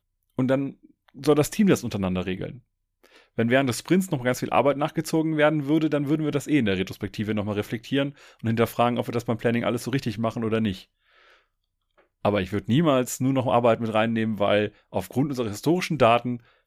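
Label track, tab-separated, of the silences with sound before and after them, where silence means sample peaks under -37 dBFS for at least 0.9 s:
10.810000	12.250000	silence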